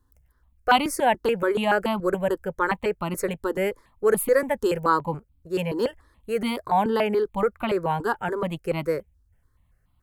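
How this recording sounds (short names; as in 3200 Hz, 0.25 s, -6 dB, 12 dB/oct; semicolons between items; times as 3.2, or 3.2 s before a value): notches that jump at a steady rate 7 Hz 630–1700 Hz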